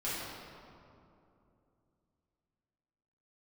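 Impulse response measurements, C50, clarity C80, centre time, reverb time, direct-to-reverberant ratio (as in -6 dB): -3.0 dB, -0.5 dB, 0.147 s, 2.8 s, -11.0 dB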